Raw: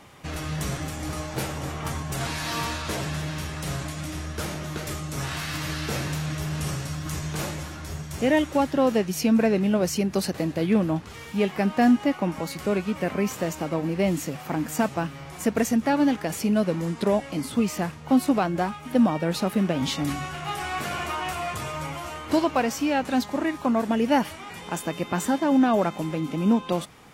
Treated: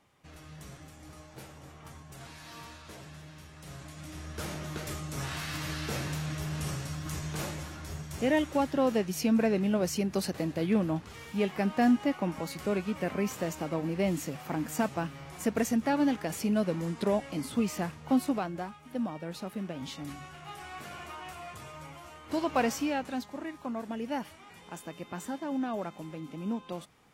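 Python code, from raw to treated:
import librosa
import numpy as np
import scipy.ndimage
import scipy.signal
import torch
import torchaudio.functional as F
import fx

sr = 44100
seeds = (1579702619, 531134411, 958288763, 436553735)

y = fx.gain(x, sr, db=fx.line((3.5, -18.0), (4.52, -5.5), (18.1, -5.5), (18.75, -13.5), (22.21, -13.5), (22.64, -2.5), (23.27, -13.0)))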